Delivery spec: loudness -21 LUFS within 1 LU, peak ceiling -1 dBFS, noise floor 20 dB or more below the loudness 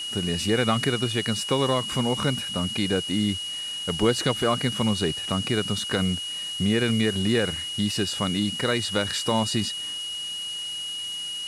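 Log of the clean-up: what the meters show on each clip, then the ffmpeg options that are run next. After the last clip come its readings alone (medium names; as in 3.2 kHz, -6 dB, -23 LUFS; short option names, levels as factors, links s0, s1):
steady tone 2.9 kHz; tone level -30 dBFS; noise floor -33 dBFS; noise floor target -45 dBFS; loudness -25.0 LUFS; peak level -9.5 dBFS; loudness target -21.0 LUFS
-> -af "bandreject=f=2900:w=30"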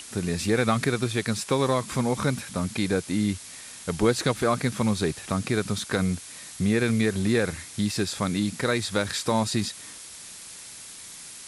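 steady tone not found; noise floor -43 dBFS; noise floor target -46 dBFS
-> -af "afftdn=nr=6:nf=-43"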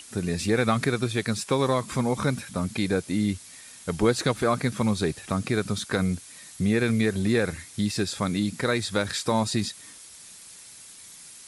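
noise floor -47 dBFS; loudness -26.0 LUFS; peak level -9.5 dBFS; loudness target -21.0 LUFS
-> -af "volume=1.78"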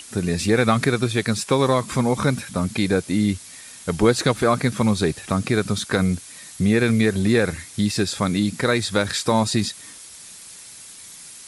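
loudness -21.0 LUFS; peak level -4.5 dBFS; noise floor -42 dBFS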